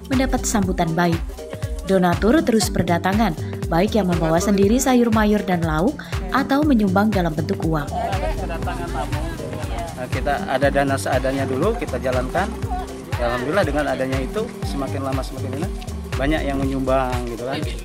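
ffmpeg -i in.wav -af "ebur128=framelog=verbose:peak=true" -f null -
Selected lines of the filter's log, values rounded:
Integrated loudness:
  I:         -20.8 LUFS
  Threshold: -30.8 LUFS
Loudness range:
  LRA:         5.4 LU
  Threshold: -40.7 LUFS
  LRA low:   -23.5 LUFS
  LRA high:  -18.2 LUFS
True peak:
  Peak:       -2.2 dBFS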